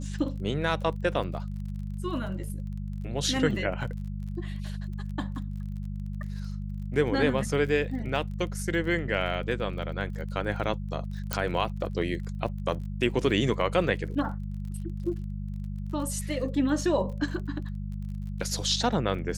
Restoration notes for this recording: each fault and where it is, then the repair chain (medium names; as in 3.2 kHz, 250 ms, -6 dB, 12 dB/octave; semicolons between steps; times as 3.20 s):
crackle 34 per s -39 dBFS
hum 50 Hz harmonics 4 -34 dBFS
11.33 s: pop -9 dBFS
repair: de-click; de-hum 50 Hz, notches 4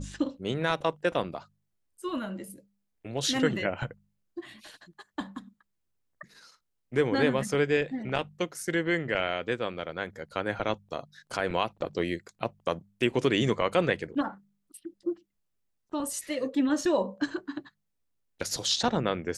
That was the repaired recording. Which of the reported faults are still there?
11.33 s: pop